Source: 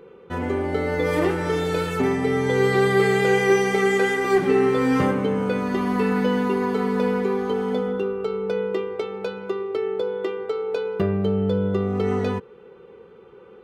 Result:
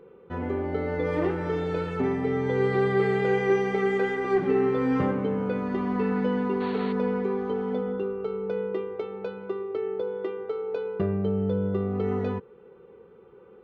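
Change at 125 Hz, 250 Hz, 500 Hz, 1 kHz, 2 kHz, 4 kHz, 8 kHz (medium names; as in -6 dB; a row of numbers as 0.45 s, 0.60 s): -4.0 dB, -4.0 dB, -4.5 dB, -6.0 dB, -8.0 dB, -11.5 dB, under -15 dB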